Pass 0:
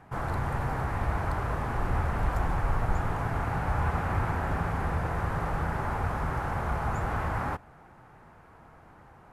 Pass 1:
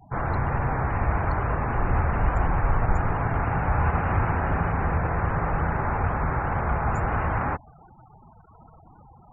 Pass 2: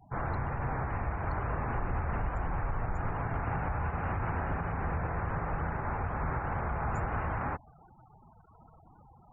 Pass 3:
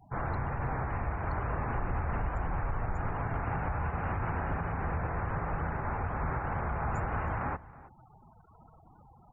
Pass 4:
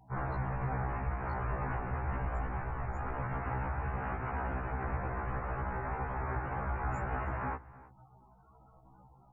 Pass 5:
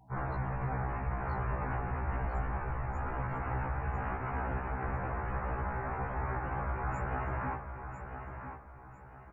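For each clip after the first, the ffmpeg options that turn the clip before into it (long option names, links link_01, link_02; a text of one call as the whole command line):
ffmpeg -i in.wav -af "afftfilt=real='re*gte(hypot(re,im),0.00631)':imag='im*gte(hypot(re,im),0.00631)':win_size=1024:overlap=0.75,volume=5dB" out.wav
ffmpeg -i in.wav -af "alimiter=limit=-17dB:level=0:latency=1:release=109,volume=-6.5dB" out.wav
ffmpeg -i in.wav -filter_complex "[0:a]asplit=2[link_01][link_02];[link_02]adelay=320.7,volume=-19dB,highshelf=frequency=4000:gain=-7.22[link_03];[link_01][link_03]amix=inputs=2:normalize=0" out.wav
ffmpeg -i in.wav -af "afftfilt=real='re*1.73*eq(mod(b,3),0)':imag='im*1.73*eq(mod(b,3),0)':win_size=2048:overlap=0.75" out.wav
ffmpeg -i in.wav -af "aecho=1:1:999|1998|2997|3996:0.376|0.128|0.0434|0.0148" out.wav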